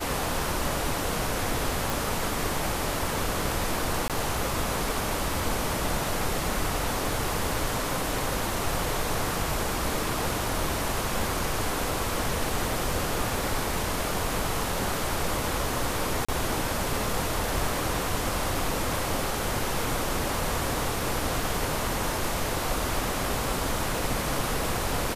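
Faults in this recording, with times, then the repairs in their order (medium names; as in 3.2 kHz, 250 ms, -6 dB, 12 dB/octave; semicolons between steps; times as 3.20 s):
1.90 s: pop
4.08–4.10 s: dropout 17 ms
16.25–16.29 s: dropout 35 ms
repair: de-click; interpolate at 4.08 s, 17 ms; interpolate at 16.25 s, 35 ms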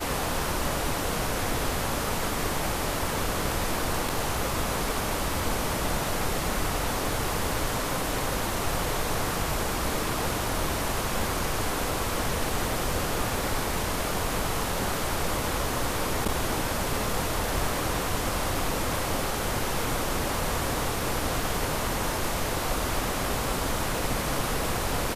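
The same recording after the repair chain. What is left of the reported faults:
nothing left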